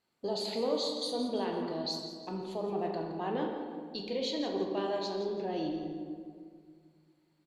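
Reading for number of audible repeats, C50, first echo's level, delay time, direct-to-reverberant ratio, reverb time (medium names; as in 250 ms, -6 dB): 2, 2.5 dB, -11.0 dB, 169 ms, 1.0 dB, 2.0 s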